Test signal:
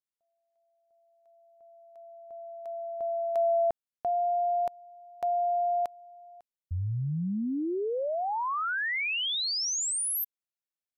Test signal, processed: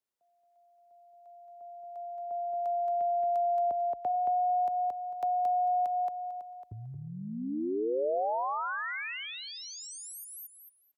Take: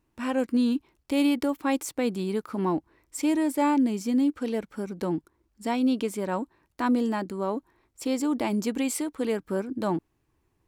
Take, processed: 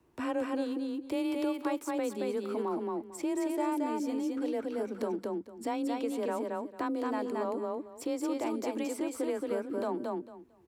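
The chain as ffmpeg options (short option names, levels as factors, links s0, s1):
-filter_complex "[0:a]acompressor=threshold=0.0141:ratio=2.5:attack=0.84:release=721:knee=1:detection=rms,aecho=1:1:224|448|672:0.708|0.127|0.0229,acrossover=split=290|680|1700[s0][s1][s2][s3];[s0]acompressor=threshold=0.00562:ratio=4[s4];[s1]acompressor=threshold=0.00891:ratio=4[s5];[s2]acompressor=threshold=0.00891:ratio=4[s6];[s3]acompressor=threshold=0.00562:ratio=4[s7];[s4][s5][s6][s7]amix=inputs=4:normalize=0,equalizer=f=480:w=0.51:g=7.5,afreqshift=22,volume=1.12"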